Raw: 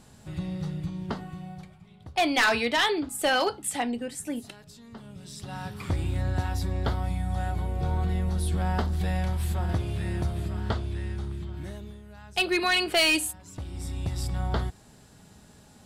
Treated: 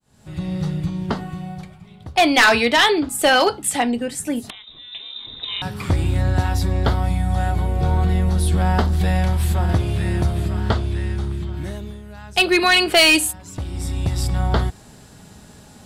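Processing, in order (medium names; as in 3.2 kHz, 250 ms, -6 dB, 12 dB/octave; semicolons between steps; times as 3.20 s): fade-in on the opening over 0.58 s; 4.50–5.62 s: frequency inversion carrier 3.8 kHz; trim +9 dB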